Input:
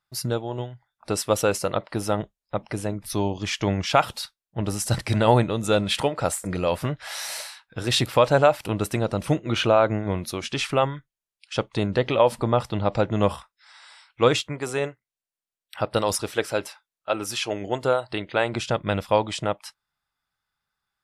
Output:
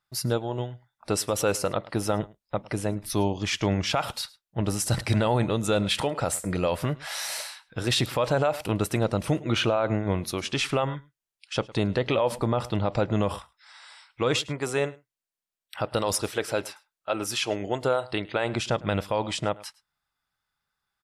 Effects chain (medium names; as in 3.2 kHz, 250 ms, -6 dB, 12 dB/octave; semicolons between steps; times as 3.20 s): on a send: delay 106 ms -23 dB; on the sum: peak limiter -14 dBFS, peak gain reduction 9 dB